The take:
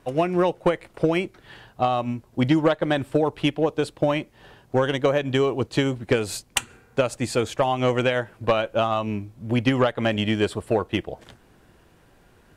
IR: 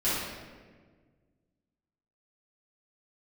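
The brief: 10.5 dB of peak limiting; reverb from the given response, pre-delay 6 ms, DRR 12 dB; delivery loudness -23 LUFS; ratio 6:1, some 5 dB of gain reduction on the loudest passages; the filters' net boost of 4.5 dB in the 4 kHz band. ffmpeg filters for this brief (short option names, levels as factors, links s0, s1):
-filter_complex "[0:a]equalizer=f=4000:t=o:g=6.5,acompressor=threshold=0.1:ratio=6,alimiter=limit=0.141:level=0:latency=1,asplit=2[s0][s1];[1:a]atrim=start_sample=2205,adelay=6[s2];[s1][s2]afir=irnorm=-1:irlink=0,volume=0.0708[s3];[s0][s3]amix=inputs=2:normalize=0,volume=1.88"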